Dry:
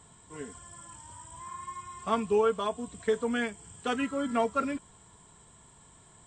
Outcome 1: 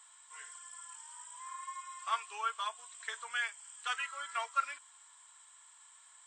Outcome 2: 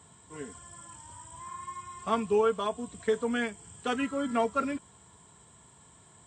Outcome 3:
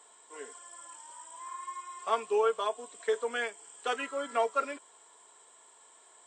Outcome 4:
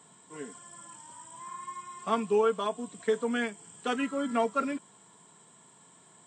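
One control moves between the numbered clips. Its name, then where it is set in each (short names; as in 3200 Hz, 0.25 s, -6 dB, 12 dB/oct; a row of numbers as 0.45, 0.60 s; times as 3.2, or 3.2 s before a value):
HPF, cutoff: 1100, 60, 410, 160 Hz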